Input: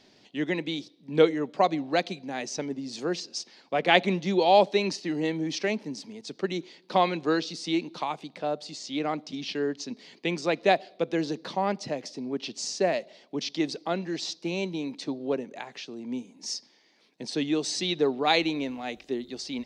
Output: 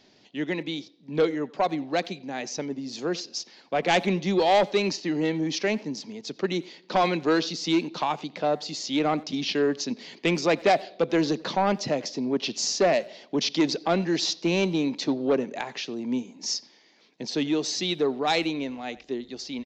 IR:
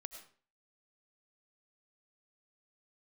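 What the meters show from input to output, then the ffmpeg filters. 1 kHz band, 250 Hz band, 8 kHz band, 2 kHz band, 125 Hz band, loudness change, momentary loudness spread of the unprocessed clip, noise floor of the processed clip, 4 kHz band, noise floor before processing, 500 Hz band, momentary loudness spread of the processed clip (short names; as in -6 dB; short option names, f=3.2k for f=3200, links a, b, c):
+1.0 dB, +3.0 dB, +4.5 dB, +1.0 dB, +3.0 dB, +2.0 dB, 13 LU, -58 dBFS, +2.5 dB, -61 dBFS, +1.5 dB, 11 LU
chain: -filter_complex "[0:a]dynaudnorm=f=380:g=17:m=11dB,aresample=16000,asoftclip=type=tanh:threshold=-14.5dB,aresample=44100,asplit=2[a][b];[b]adelay=90,highpass=300,lowpass=3.4k,asoftclip=type=hard:threshold=-22dB,volume=-20dB[c];[a][c]amix=inputs=2:normalize=0"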